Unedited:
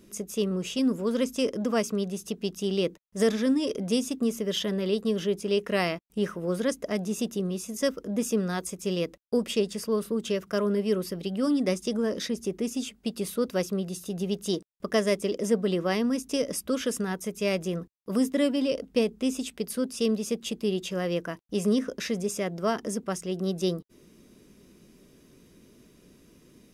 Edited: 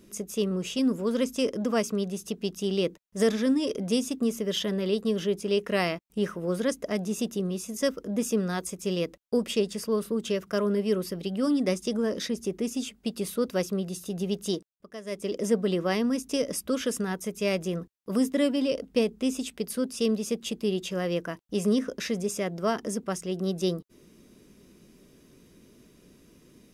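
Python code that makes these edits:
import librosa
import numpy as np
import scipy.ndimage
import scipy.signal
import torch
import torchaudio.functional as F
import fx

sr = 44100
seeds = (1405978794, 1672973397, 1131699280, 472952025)

y = fx.edit(x, sr, fx.fade_down_up(start_s=14.48, length_s=0.91, db=-16.5, fade_s=0.36), tone=tone)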